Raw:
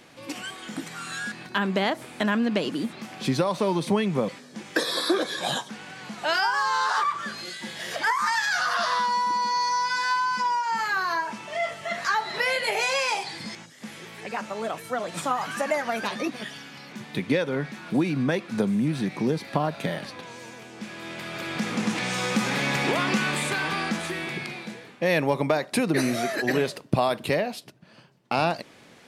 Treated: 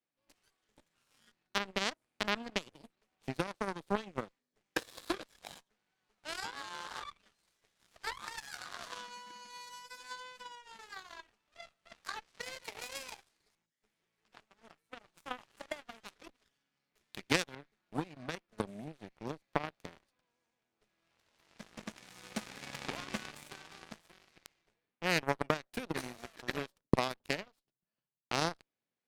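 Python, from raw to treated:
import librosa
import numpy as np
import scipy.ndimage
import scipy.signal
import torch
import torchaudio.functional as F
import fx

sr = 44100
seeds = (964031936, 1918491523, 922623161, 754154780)

y = fx.high_shelf(x, sr, hz=2100.0, db=9.5, at=(16.95, 17.55))
y = fx.cheby_harmonics(y, sr, harmonics=(3, 5, 6, 8), levels_db=(-9, -39, -41, -40), full_scale_db=-8.5)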